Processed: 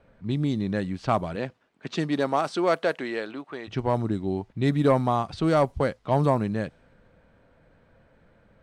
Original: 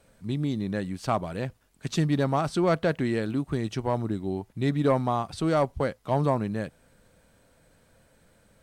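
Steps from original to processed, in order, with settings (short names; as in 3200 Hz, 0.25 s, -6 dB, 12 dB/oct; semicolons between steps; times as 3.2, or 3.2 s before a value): 1.35–3.67 HPF 180 Hz -> 610 Hz 12 dB/oct; low-pass opened by the level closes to 2200 Hz, open at -20.5 dBFS; gain +2.5 dB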